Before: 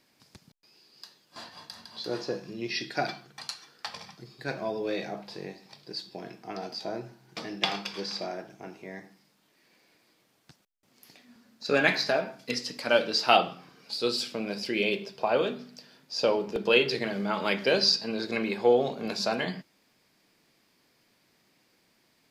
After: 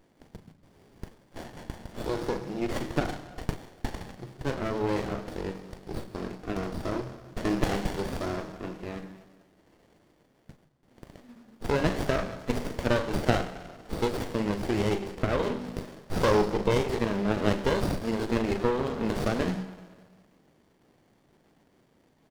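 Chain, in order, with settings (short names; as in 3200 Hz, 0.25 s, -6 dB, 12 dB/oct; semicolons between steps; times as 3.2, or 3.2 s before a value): 7.45–7.96 sample leveller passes 2; compressor 3:1, threshold -29 dBFS, peak gain reduction 10.5 dB; 15.64–16.43 sample leveller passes 2; doubler 38 ms -10 dB; on a send at -12.5 dB: reverb RT60 1.7 s, pre-delay 72 ms; on the sum: running maximum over 33 samples; gain +6 dB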